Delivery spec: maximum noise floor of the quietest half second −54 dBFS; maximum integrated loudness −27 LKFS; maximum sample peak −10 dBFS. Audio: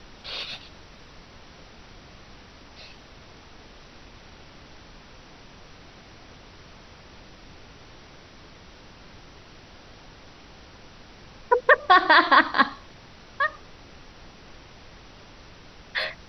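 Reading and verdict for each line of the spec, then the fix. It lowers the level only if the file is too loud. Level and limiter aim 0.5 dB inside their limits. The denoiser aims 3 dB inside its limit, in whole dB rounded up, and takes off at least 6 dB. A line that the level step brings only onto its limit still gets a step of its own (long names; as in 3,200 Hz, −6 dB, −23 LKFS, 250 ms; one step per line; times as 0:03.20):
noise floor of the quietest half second −48 dBFS: out of spec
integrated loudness −20.5 LKFS: out of spec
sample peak −4.5 dBFS: out of spec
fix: level −7 dB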